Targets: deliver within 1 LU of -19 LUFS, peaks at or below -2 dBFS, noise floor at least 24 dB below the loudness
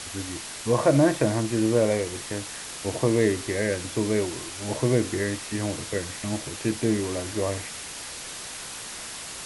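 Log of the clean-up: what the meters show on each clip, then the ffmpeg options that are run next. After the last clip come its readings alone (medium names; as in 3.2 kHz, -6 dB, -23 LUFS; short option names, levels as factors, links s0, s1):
noise floor -38 dBFS; noise floor target -51 dBFS; loudness -26.5 LUFS; peak level -8.0 dBFS; loudness target -19.0 LUFS
-> -af "afftdn=nr=13:nf=-38"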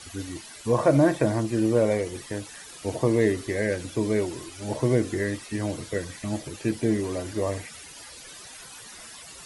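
noise floor -44 dBFS; noise floor target -51 dBFS
-> -af "afftdn=nr=7:nf=-44"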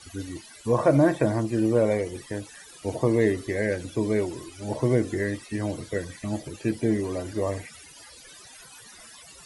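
noise floor -48 dBFS; noise floor target -51 dBFS
-> -af "afftdn=nr=6:nf=-48"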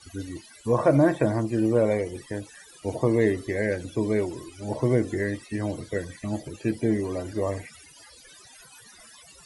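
noise floor -51 dBFS; loudness -26.5 LUFS; peak level -8.0 dBFS; loudness target -19.0 LUFS
-> -af "volume=2.37,alimiter=limit=0.794:level=0:latency=1"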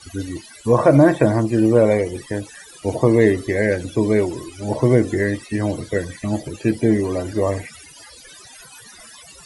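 loudness -19.0 LUFS; peak level -2.0 dBFS; noise floor -44 dBFS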